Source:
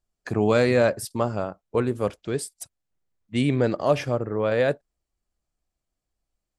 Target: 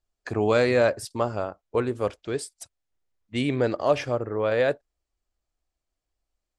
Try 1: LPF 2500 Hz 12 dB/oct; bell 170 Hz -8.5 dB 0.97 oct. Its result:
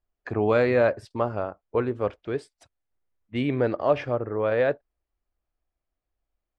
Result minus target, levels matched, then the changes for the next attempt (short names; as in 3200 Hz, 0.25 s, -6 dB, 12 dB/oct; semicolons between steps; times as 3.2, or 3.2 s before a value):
8000 Hz band -18.5 dB
change: LPF 8200 Hz 12 dB/oct